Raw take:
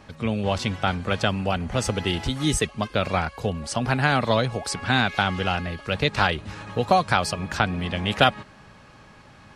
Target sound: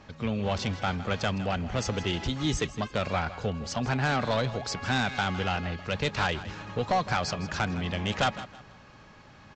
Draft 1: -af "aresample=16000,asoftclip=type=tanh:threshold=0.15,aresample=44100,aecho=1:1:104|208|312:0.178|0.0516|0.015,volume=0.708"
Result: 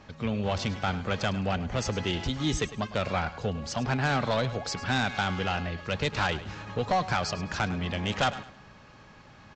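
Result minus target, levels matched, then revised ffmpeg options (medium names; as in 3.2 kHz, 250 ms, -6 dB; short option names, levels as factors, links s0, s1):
echo 56 ms early
-af "aresample=16000,asoftclip=type=tanh:threshold=0.15,aresample=44100,aecho=1:1:160|320|480:0.178|0.0516|0.015,volume=0.708"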